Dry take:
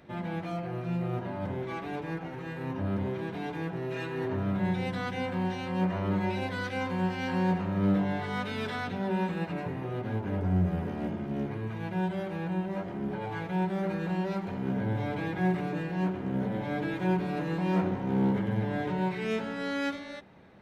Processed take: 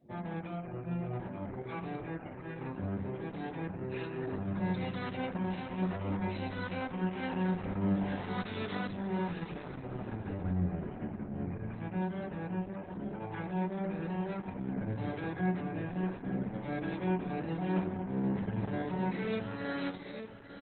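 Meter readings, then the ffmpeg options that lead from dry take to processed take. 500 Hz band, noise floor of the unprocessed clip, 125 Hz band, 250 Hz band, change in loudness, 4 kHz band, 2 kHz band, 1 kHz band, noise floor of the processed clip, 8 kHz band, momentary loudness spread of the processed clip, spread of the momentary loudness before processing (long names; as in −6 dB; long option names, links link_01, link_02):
−5.0 dB, −39 dBFS, −5.0 dB, −4.5 dB, −5.0 dB, −6.5 dB, −6.0 dB, −5.5 dB, −45 dBFS, can't be measured, 7 LU, 7 LU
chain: -filter_complex "[0:a]afftdn=noise_reduction=26:noise_floor=-51,acrossover=split=110|2100[link_01][link_02][link_03];[link_03]crystalizer=i=2:c=0[link_04];[link_01][link_02][link_04]amix=inputs=3:normalize=0,asplit=2[link_05][link_06];[link_06]adelay=883,lowpass=frequency=4400:poles=1,volume=-9.5dB,asplit=2[link_07][link_08];[link_08]adelay=883,lowpass=frequency=4400:poles=1,volume=0.18,asplit=2[link_09][link_10];[link_10]adelay=883,lowpass=frequency=4400:poles=1,volume=0.18[link_11];[link_05][link_07][link_09][link_11]amix=inputs=4:normalize=0,volume=-4dB" -ar 48000 -c:a libopus -b:a 8k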